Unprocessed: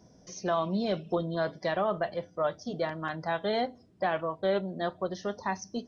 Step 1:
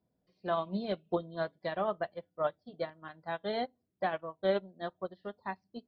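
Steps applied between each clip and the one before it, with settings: steep low-pass 4.6 kHz 72 dB/octave; upward expansion 2.5:1, over -39 dBFS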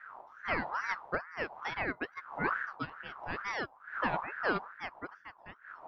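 fade out at the end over 1.11 s; wind noise 160 Hz -40 dBFS; ring modulator with a swept carrier 1.2 kHz, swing 35%, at 2.3 Hz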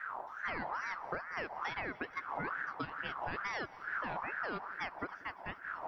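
peak limiter -28.5 dBFS, peak gain reduction 10.5 dB; compression 5:1, threshold -44 dBFS, peak gain reduction 9.5 dB; multi-head delay 92 ms, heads second and third, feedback 74%, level -23 dB; trim +8 dB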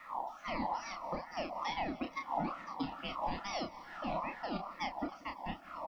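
static phaser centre 420 Hz, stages 6; doubling 30 ms -5.5 dB; Shepard-style phaser falling 1.9 Hz; trim +7.5 dB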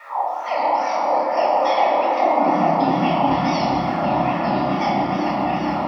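reverberation RT60 2.3 s, pre-delay 3 ms, DRR -5.5 dB; high-pass sweep 510 Hz -> 110 Hz, 2.17–2.86 s; delay with an opening low-pass 416 ms, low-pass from 750 Hz, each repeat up 1 oct, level 0 dB; trim +5.5 dB

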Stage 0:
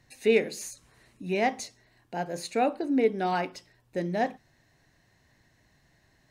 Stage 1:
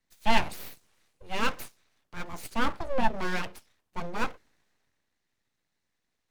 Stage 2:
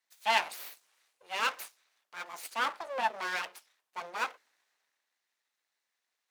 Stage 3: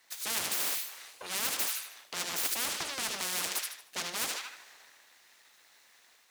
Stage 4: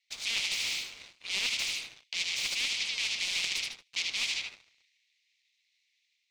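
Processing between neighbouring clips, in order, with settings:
hum notches 60/120/180 Hz; full-wave rectifier; three bands expanded up and down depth 40%
high-pass 720 Hz 12 dB/octave
level rider gain up to 3.5 dB; feedback echo behind a high-pass 76 ms, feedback 33%, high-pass 2.6 kHz, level -7 dB; spectrum-flattening compressor 10:1
elliptic high-pass 2.2 kHz, stop band 40 dB; waveshaping leveller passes 3; distance through air 150 m

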